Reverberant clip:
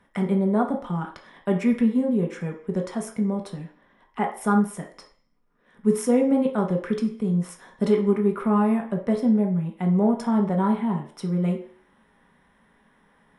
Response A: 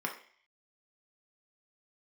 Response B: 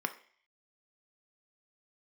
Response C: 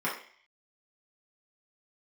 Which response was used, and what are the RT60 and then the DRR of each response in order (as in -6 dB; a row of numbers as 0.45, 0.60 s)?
A; 0.50, 0.50, 0.50 s; 0.5, 7.5, -7.0 dB